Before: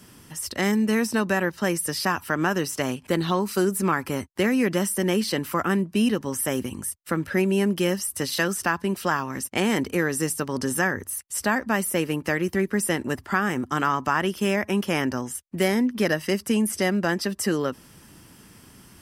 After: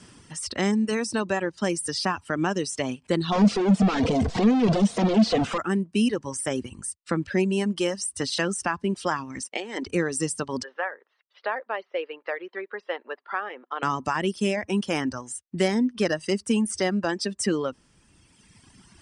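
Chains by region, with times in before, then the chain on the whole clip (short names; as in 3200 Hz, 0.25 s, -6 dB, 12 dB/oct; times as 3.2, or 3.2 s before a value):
3.32–5.58 infinite clipping + air absorption 130 m + small resonant body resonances 210/470/680 Hz, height 11 dB, ringing for 35 ms
9.42–9.87 negative-ratio compressor -25 dBFS, ratio -0.5 + BPF 360–6800 Hz
10.63–13.83 Chebyshev band-pass 480–4100 Hz, order 3 + air absorption 290 m
whole clip: elliptic low-pass 9200 Hz, stop band 40 dB; reverb removal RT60 2 s; dynamic EQ 1700 Hz, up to -5 dB, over -36 dBFS, Q 1.1; gain +1.5 dB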